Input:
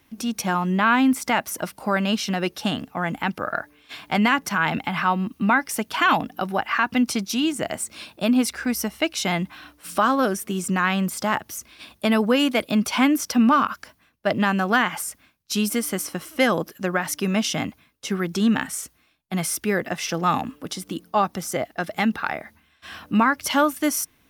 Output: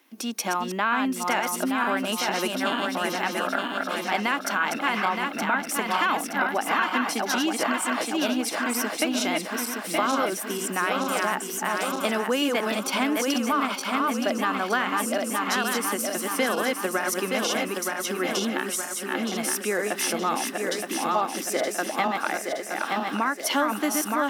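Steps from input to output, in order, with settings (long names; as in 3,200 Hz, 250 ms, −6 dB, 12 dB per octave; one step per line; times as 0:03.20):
feedback delay that plays each chunk backwards 460 ms, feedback 71%, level −3.5 dB
downward compressor 4 to 1, threshold −20 dBFS, peak gain reduction 7.5 dB
high-pass filter 260 Hz 24 dB per octave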